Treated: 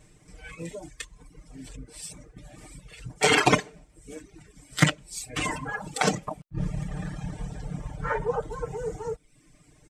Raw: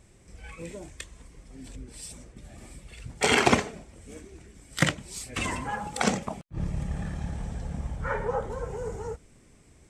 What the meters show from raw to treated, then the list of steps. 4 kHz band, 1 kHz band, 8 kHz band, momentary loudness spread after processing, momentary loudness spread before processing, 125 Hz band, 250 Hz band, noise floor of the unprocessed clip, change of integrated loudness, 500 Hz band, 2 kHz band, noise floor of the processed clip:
+2.0 dB, +1.5 dB, +1.5 dB, 22 LU, 22 LU, +2.0 dB, +0.5 dB, −57 dBFS, +1.5 dB, +1.5 dB, +1.5 dB, −60 dBFS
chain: comb filter 6.6 ms, depth 92%
reverb reduction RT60 0.84 s

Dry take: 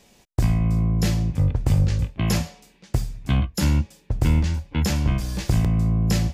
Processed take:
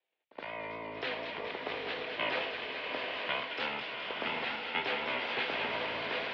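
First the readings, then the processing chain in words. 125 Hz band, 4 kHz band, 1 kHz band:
−37.0 dB, −1.0 dB, 0.0 dB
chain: noise gate −51 dBFS, range −23 dB
high-shelf EQ 2,500 Hz +9 dB
brickwall limiter −16.5 dBFS, peak gain reduction 9.5 dB
automatic gain control gain up to 8 dB
single-sideband voice off tune −71 Hz 480–3,600 Hz
high-frequency loss of the air 170 metres
on a send: delay with a high-pass on its return 212 ms, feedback 73%, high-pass 1,600 Hz, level −6 dB
on the sum: pitch vibrato 4.2 Hz 53 cents
echo ahead of the sound 71 ms −18 dB
slow-attack reverb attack 910 ms, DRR 1.5 dB
level −5.5 dB

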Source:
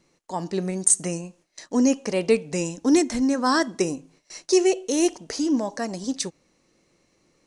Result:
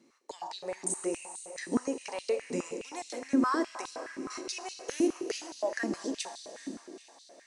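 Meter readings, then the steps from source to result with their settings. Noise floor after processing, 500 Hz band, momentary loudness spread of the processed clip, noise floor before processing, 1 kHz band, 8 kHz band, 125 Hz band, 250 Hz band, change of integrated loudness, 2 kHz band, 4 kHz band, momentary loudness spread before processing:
−58 dBFS, −10.5 dB, 14 LU, −67 dBFS, −7.0 dB, −13.0 dB, −16.5 dB, −10.5 dB, −11.0 dB, −7.0 dB, −9.0 dB, 13 LU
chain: dynamic equaliser 5,000 Hz, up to −5 dB, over −40 dBFS, Q 0.94
downward compressor 2.5 to 1, threshold −31 dBFS, peak gain reduction 11.5 dB
feedback delay with all-pass diffusion 462 ms, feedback 52%, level −11 dB
four-comb reverb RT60 2 s, combs from 26 ms, DRR 7.5 dB
high-pass on a step sequencer 9.6 Hz 260–3,900 Hz
level −4 dB

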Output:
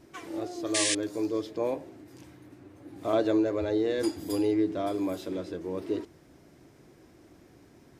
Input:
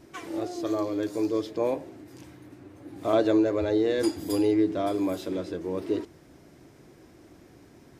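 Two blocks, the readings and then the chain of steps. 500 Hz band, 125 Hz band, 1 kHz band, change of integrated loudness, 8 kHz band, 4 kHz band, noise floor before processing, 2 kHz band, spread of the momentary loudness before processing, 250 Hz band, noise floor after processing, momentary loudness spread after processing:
−3.0 dB, −3.0 dB, −3.0 dB, −2.5 dB, +12.0 dB, +5.0 dB, −54 dBFS, +1.5 dB, 12 LU, −3.0 dB, −57 dBFS, 12 LU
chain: sound drawn into the spectrogram noise, 0:00.74–0:00.95, 1,600–10,000 Hz −24 dBFS
level −3 dB

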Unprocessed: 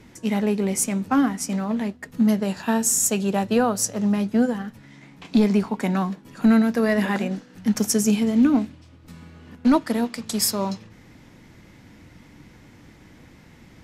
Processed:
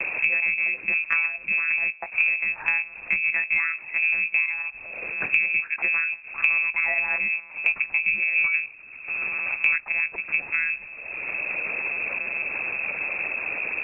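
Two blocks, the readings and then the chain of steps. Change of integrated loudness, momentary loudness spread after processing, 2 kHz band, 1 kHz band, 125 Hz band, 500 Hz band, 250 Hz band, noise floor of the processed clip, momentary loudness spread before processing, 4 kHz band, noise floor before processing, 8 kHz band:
−1.0 dB, 7 LU, +15.0 dB, −9.5 dB, below −20 dB, −17.0 dB, below −30 dB, −43 dBFS, 9 LU, below −10 dB, −50 dBFS, below −40 dB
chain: one-pitch LPC vocoder at 8 kHz 160 Hz
voice inversion scrambler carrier 2,600 Hz
multiband upward and downward compressor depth 100%
level −4 dB

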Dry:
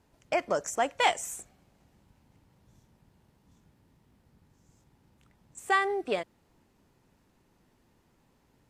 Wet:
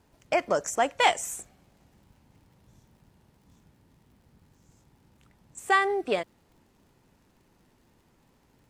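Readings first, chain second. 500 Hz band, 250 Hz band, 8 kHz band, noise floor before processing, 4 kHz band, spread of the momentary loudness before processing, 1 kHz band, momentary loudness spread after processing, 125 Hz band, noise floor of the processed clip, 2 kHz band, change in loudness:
+3.0 dB, +3.0 dB, +3.0 dB, −69 dBFS, +3.0 dB, 15 LU, +3.0 dB, 15 LU, +3.0 dB, −65 dBFS, +3.0 dB, +3.0 dB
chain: surface crackle 69 per second −59 dBFS
level +3 dB

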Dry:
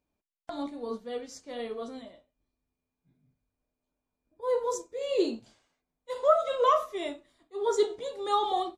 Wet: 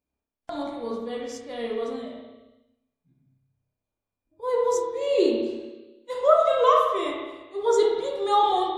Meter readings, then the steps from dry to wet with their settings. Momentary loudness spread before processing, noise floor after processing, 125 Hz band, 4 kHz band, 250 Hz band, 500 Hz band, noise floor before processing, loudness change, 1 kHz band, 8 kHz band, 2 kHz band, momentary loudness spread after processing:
17 LU, below −85 dBFS, can't be measured, +4.5 dB, +6.0 dB, +6.0 dB, below −85 dBFS, +5.5 dB, +6.0 dB, +3.0 dB, +6.0 dB, 17 LU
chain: spring reverb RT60 1.2 s, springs 30/58 ms, chirp 35 ms, DRR −0.5 dB
noise reduction from a noise print of the clip's start 8 dB
level +3 dB

